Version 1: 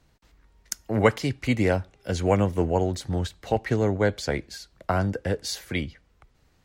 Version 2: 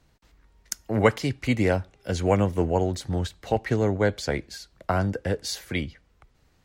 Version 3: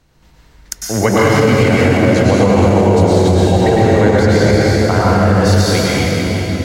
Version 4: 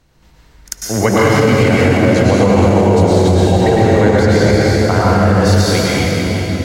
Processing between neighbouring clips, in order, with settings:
no audible change
reverberation RT60 4.7 s, pre-delay 96 ms, DRR -8.5 dB; loudness maximiser +7.5 dB; trim -1 dB
reverse echo 44 ms -20.5 dB

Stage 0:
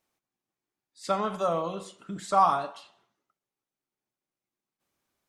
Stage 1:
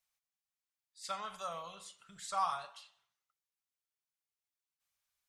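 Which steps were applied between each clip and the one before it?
amplifier tone stack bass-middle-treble 10-0-10; trim -2.5 dB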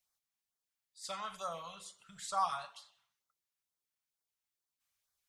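LFO notch sine 2.2 Hz 330–2800 Hz; trim +1.5 dB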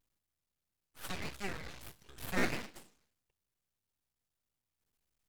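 cycle switcher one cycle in 3, muted; full-wave rectifier; vibrato 1.6 Hz 90 cents; trim +4 dB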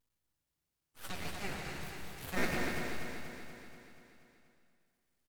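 flange 1 Hz, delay 8 ms, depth 6.2 ms, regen +65%; on a send: feedback delay 240 ms, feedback 60%, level -6 dB; on the sum: plate-style reverb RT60 2 s, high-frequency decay 0.95×, pre-delay 85 ms, DRR 2 dB; trim +2.5 dB

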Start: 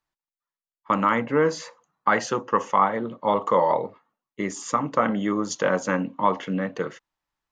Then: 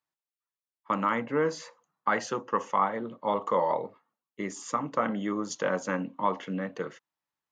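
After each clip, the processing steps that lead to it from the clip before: high-pass 110 Hz; trim -6 dB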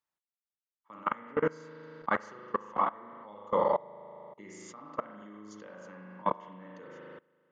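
spring tank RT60 1.5 s, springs 38 ms, chirp 60 ms, DRR -1 dB; level held to a coarse grid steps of 23 dB; trim -2 dB

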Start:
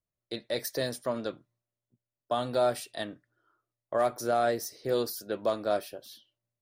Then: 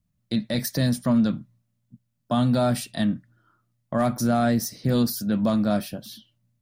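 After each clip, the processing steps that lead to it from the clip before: resonant low shelf 290 Hz +11 dB, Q 3; in parallel at +2.5 dB: peak limiter -24.5 dBFS, peak gain reduction 9.5 dB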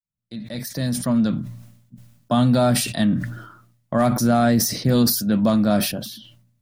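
fade-in on the opening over 1.68 s; decay stretcher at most 68 dB/s; trim +4 dB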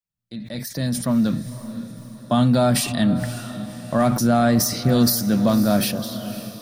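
echo that smears into a reverb 542 ms, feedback 49%, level -13 dB

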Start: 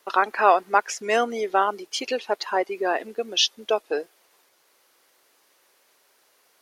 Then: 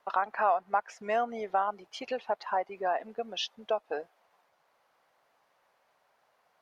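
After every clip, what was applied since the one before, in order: FFT filter 170 Hz 0 dB, 360 Hz -14 dB, 700 Hz +1 dB, 9.3 kHz -22 dB; compression 2:1, threshold -28 dBFS, peak gain reduction 8.5 dB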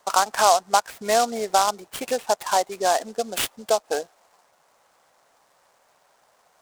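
delay time shaken by noise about 5.4 kHz, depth 0.061 ms; trim +9 dB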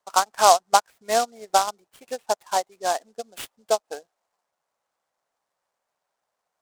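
upward expansion 2.5:1, over -29 dBFS; trim +3.5 dB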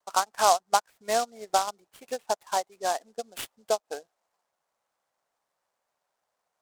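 in parallel at +2 dB: compression, threshold -27 dBFS, peak gain reduction 16.5 dB; on the sum: vibrato 0.44 Hz 16 cents; trim -7.5 dB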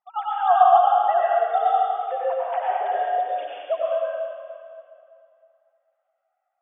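formants replaced by sine waves; plate-style reverb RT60 2.4 s, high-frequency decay 0.85×, pre-delay 80 ms, DRR -7 dB

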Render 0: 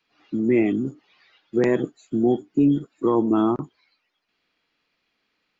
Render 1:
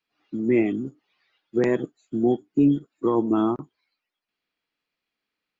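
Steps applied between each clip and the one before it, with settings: upward expansion 1.5:1, over -37 dBFS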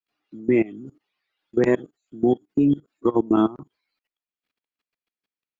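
level held to a coarse grid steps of 21 dB; trim +4.5 dB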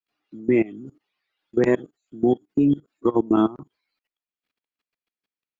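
no audible change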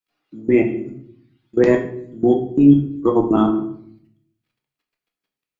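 simulated room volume 110 m³, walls mixed, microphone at 0.61 m; trim +2.5 dB

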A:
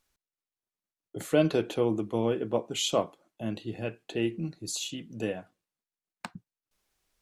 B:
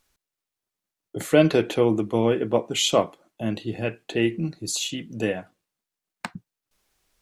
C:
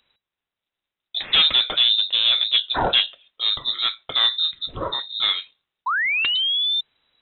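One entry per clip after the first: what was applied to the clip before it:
dynamic bell 2 kHz, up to +6 dB, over -54 dBFS, Q 3; trim +6.5 dB
painted sound fall, 5.86–6.81 s, 290–3000 Hz -26 dBFS; Chebyshev shaper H 2 -9 dB, 5 -9 dB, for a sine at -4.5 dBFS; frequency inversion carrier 3.9 kHz; trim -4 dB

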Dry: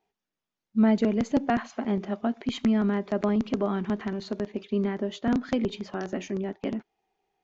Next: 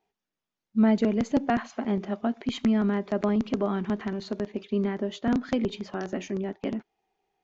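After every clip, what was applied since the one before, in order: no audible change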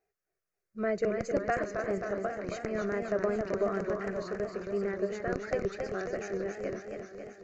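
static phaser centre 900 Hz, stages 6; feedback echo behind a high-pass 416 ms, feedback 85%, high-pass 4.1 kHz, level -18 dB; modulated delay 269 ms, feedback 67%, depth 126 cents, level -6 dB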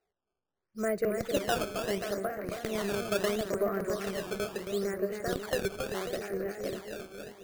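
decimation with a swept rate 13×, swing 160% 0.74 Hz

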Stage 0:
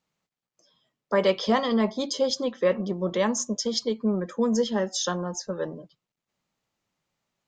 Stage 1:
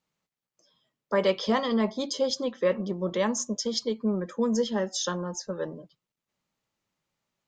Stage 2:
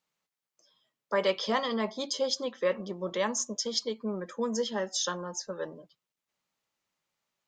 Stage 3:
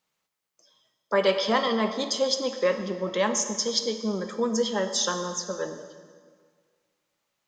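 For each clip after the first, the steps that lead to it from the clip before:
band-stop 720 Hz, Q 19; trim -2 dB
bass shelf 360 Hz -10.5 dB
plate-style reverb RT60 1.8 s, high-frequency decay 0.85×, pre-delay 0 ms, DRR 7.5 dB; trim +4.5 dB

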